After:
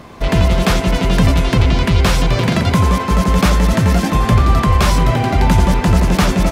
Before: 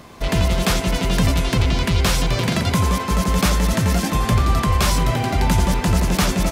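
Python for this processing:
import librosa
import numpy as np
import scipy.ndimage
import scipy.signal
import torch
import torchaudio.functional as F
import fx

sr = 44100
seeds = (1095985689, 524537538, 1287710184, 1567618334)

y = fx.high_shelf(x, sr, hz=4000.0, db=-8.5)
y = y * librosa.db_to_amplitude(5.5)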